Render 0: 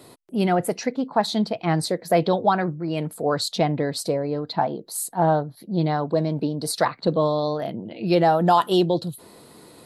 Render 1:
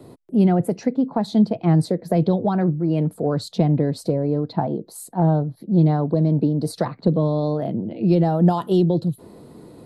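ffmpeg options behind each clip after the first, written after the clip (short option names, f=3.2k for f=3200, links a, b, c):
-filter_complex "[0:a]tiltshelf=f=800:g=9,acrossover=split=250|3000[a][b][c];[b]acompressor=threshold=-20dB:ratio=6[d];[a][d][c]amix=inputs=3:normalize=0"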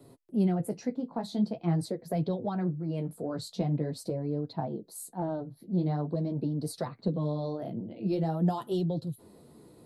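-af "highshelf=f=4.6k:g=8,flanger=delay=7.1:depth=10:regen=-26:speed=0.45:shape=sinusoidal,volume=-8dB"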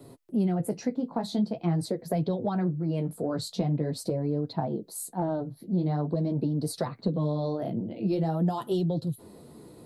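-af "acompressor=threshold=-30dB:ratio=2.5,volume=5.5dB"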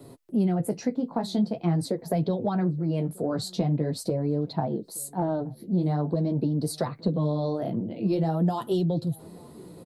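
-filter_complex "[0:a]asplit=2[a][b];[b]adelay=874.6,volume=-25dB,highshelf=f=4k:g=-19.7[c];[a][c]amix=inputs=2:normalize=0,volume=2dB"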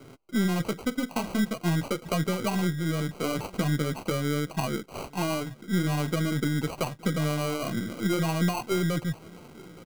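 -af "aeval=exprs='if(lt(val(0),0),0.708*val(0),val(0))':c=same,acrusher=samples=25:mix=1:aa=0.000001"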